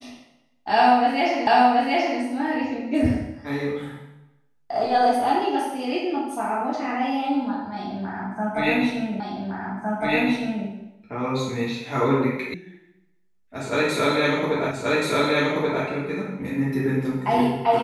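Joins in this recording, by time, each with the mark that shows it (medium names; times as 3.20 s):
1.47 s: repeat of the last 0.73 s
9.20 s: repeat of the last 1.46 s
12.54 s: sound stops dead
14.71 s: repeat of the last 1.13 s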